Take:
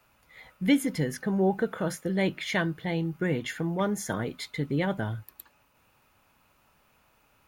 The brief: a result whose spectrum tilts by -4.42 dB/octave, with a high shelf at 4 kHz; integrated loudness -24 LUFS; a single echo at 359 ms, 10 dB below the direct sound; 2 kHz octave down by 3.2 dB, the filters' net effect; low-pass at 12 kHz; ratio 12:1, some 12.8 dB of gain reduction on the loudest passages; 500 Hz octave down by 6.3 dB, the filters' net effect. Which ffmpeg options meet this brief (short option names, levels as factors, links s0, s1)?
-af "lowpass=12000,equalizer=f=500:t=o:g=-8.5,equalizer=f=2000:t=o:g=-5,highshelf=f=4000:g=7.5,acompressor=threshold=0.0251:ratio=12,aecho=1:1:359:0.316,volume=4.22"